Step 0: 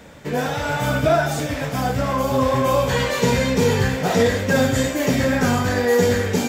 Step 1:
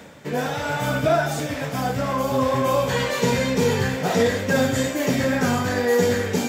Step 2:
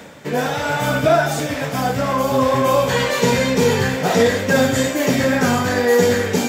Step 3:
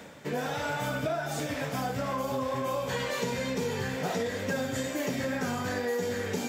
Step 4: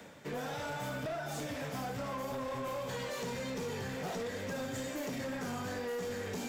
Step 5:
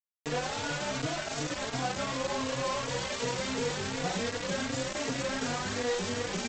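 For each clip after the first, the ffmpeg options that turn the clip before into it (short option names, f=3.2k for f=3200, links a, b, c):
-af "highpass=100,areverse,acompressor=mode=upward:threshold=-30dB:ratio=2.5,areverse,volume=-2dB"
-af "lowshelf=f=150:g=-4,volume=5dB"
-af "acompressor=threshold=-20dB:ratio=6,volume=-8dB"
-filter_complex "[0:a]acrossover=split=100|1200|3500[a][b][c][d];[c]alimiter=level_in=11.5dB:limit=-24dB:level=0:latency=1,volume=-11.5dB[e];[a][b][e][d]amix=inputs=4:normalize=0,volume=29.5dB,asoftclip=hard,volume=-29.5dB,volume=-5dB"
-filter_complex "[0:a]aresample=16000,acrusher=bits=5:mix=0:aa=0.000001,aresample=44100,asplit=2[a][b];[b]adelay=3.6,afreqshift=2.7[c];[a][c]amix=inputs=2:normalize=1,volume=5.5dB"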